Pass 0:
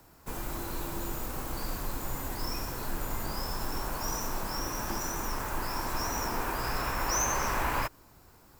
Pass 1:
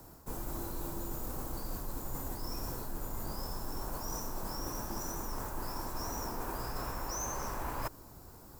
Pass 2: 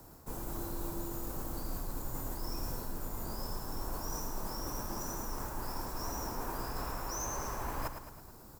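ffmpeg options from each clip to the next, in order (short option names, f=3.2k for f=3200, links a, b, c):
-af "equalizer=f=2.4k:w=0.8:g=-10.5,areverse,acompressor=threshold=-41dB:ratio=5,areverse,volume=5.5dB"
-af "aecho=1:1:109|218|327|436|545|654:0.376|0.199|0.106|0.056|0.0297|0.0157,volume=-1dB"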